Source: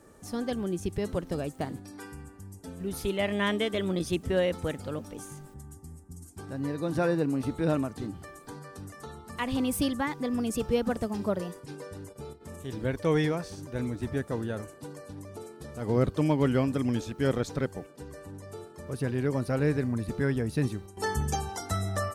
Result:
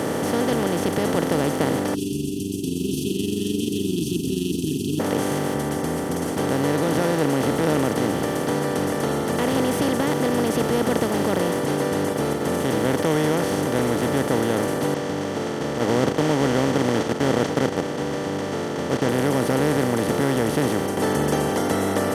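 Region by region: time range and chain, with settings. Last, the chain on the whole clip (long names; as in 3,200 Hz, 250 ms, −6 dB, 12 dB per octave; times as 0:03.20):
0:01.94–0:05.00: linear-phase brick-wall band-stop 390–2,500 Hz + amplitude modulation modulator 23 Hz, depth 35%
0:14.94–0:19.09: variable-slope delta modulation 32 kbit/s + noise gate −36 dBFS, range −15 dB
whole clip: compressor on every frequency bin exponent 0.2; high-pass filter 180 Hz 12 dB per octave; low-shelf EQ 360 Hz +8 dB; level −4 dB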